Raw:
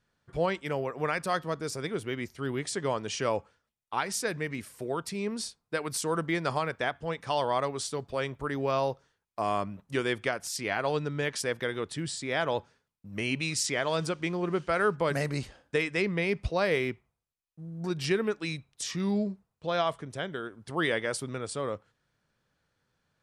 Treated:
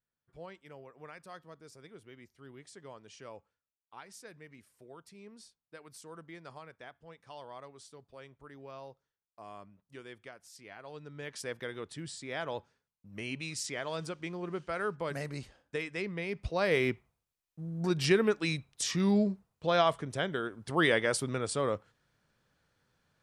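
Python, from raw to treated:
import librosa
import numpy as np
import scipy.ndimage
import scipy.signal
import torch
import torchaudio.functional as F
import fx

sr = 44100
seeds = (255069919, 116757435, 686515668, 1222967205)

y = fx.gain(x, sr, db=fx.line((10.85, -19.0), (11.46, -8.0), (16.3, -8.0), (16.89, 2.0)))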